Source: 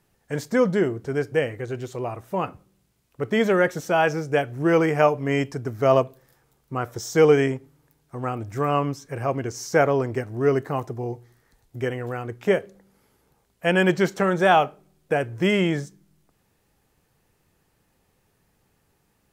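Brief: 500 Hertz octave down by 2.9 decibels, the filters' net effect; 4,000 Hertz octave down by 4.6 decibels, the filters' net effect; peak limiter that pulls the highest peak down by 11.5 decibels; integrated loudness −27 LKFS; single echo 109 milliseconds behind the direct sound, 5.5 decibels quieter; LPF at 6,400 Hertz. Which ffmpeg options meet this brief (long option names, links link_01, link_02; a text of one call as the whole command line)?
ffmpeg -i in.wav -af "lowpass=6400,equalizer=frequency=500:width_type=o:gain=-3.5,equalizer=frequency=4000:width_type=o:gain=-6.5,alimiter=limit=-18dB:level=0:latency=1,aecho=1:1:109:0.531,volume=1.5dB" out.wav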